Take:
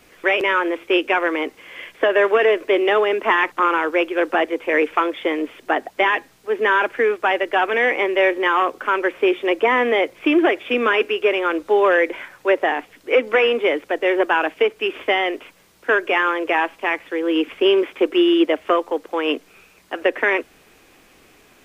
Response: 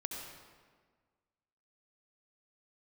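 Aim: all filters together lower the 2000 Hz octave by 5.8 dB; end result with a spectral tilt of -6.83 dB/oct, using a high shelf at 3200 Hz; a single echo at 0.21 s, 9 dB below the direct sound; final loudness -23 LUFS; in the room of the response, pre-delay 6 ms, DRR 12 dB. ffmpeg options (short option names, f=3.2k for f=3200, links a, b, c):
-filter_complex "[0:a]equalizer=f=2k:t=o:g=-5,highshelf=f=3.2k:g=-7,aecho=1:1:210:0.355,asplit=2[a][b];[1:a]atrim=start_sample=2205,adelay=6[c];[b][c]afir=irnorm=-1:irlink=0,volume=-12.5dB[d];[a][d]amix=inputs=2:normalize=0,volume=-3dB"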